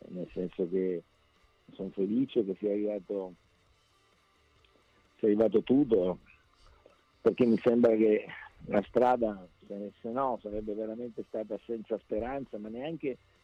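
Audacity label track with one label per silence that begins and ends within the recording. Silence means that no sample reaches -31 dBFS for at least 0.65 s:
0.990000	1.810000	silence
3.250000	5.230000	silence
6.130000	7.260000	silence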